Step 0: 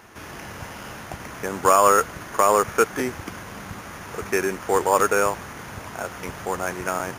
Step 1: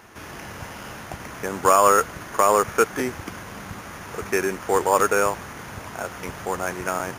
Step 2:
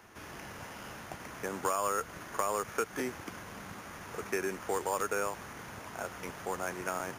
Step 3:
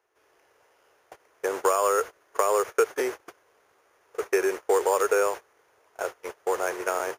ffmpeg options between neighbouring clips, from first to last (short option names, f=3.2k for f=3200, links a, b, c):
-af anull
-filter_complex "[0:a]acrossover=split=160|2000[a][b][c];[a]acompressor=threshold=-45dB:ratio=4[d];[b]acompressor=threshold=-22dB:ratio=4[e];[c]acompressor=threshold=-30dB:ratio=4[f];[d][e][f]amix=inputs=3:normalize=0,volume=-8dB"
-af "agate=range=-25dB:threshold=-39dB:ratio=16:detection=peak,lowshelf=f=300:t=q:w=3:g=-12,volume=6dB"